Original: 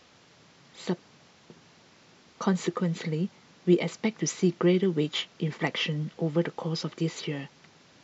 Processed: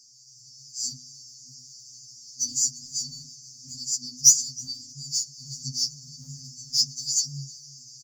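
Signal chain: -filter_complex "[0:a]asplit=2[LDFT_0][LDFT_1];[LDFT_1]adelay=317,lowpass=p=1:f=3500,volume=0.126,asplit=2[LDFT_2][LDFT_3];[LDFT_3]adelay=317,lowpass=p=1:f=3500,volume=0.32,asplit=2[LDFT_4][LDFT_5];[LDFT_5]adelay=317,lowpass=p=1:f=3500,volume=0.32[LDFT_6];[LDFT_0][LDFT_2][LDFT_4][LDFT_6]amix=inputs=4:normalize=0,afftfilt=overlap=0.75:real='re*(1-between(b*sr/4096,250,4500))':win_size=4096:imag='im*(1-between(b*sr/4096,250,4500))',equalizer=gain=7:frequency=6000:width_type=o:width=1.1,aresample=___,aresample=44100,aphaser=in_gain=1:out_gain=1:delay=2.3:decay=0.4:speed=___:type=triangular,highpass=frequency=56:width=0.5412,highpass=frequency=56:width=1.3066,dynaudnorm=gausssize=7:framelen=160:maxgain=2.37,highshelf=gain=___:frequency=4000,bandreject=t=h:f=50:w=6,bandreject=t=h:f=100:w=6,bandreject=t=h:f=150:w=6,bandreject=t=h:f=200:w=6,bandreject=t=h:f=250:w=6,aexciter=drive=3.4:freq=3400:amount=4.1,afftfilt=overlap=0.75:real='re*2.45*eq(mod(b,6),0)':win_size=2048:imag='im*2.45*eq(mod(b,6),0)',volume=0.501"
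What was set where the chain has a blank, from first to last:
22050, 1.9, 4.5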